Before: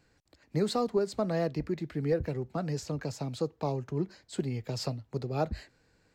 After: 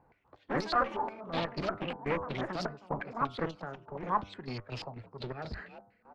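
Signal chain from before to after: bin magnitudes rounded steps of 15 dB; echoes that change speed 95 ms, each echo +5 st, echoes 2; 0.83–1.24 resonator 110 Hz, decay 0.65 s, harmonics all, mix 80%; in parallel at -6.5 dB: soft clip -33.5 dBFS, distortion -6 dB; on the sum: frequency-shifting echo 0.347 s, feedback 37%, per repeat +49 Hz, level -22.5 dB; step gate "x.x.x.xxx..x." 124 bpm -12 dB; 1.96–3.07 expander -33 dBFS; one-sided clip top -39 dBFS; de-hum 99.29 Hz, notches 15; 3.57–4.03 compressor 2.5:1, threshold -42 dBFS, peak gain reduction 10.5 dB; low shelf 380 Hz -4 dB; stepped low-pass 8.3 Hz 890–4500 Hz

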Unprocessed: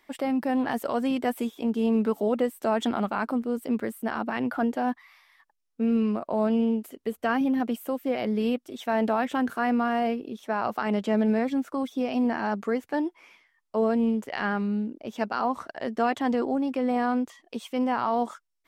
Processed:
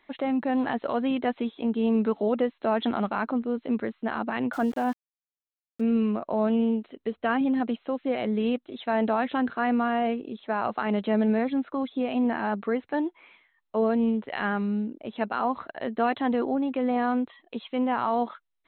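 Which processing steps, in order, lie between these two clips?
brick-wall FIR low-pass 4200 Hz; 4.53–5.81 sample gate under -42 dBFS

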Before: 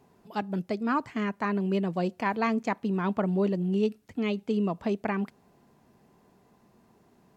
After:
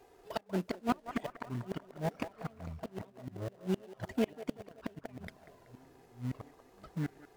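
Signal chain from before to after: envelope flanger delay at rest 2.5 ms, full sweep at -24.5 dBFS; bell 140 Hz -14.5 dB 1.5 oct; notch 850 Hz, Q 12; flipped gate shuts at -27 dBFS, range -34 dB; echoes that change speed 0.706 s, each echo -7 st, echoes 2, each echo -6 dB; bell 650 Hz +8 dB 0.38 oct; band-limited delay 0.189 s, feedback 50%, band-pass 890 Hz, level -10 dB; in parallel at -8.5 dB: sample-rate reducer 1200 Hz, jitter 20%; on the sum: gain +5 dB

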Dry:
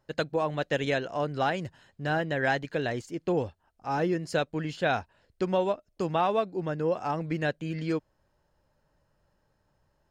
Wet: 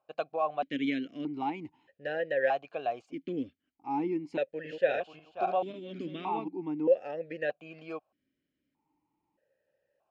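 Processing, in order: 4.39–6.48 regenerating reverse delay 0.268 s, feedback 41%, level -3.5 dB; vowel sequencer 1.6 Hz; gain +6.5 dB

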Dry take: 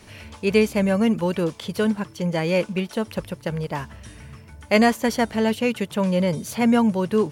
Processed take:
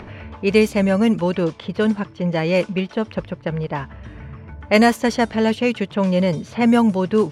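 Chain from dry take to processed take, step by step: low-pass opened by the level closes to 1500 Hz, open at -13.5 dBFS; upward compressor, threshold -32 dBFS; gain +3 dB

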